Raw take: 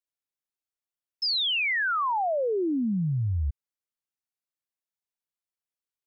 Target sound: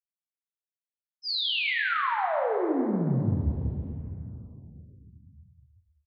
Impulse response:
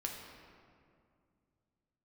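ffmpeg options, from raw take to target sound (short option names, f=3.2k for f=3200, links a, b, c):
-filter_complex "[0:a]aresample=11025,aresample=44100,agate=range=-33dB:threshold=-19dB:ratio=3:detection=peak[a];[1:a]atrim=start_sample=2205,asetrate=34398,aresample=44100[b];[a][b]afir=irnorm=-1:irlink=0,volume=7.5dB"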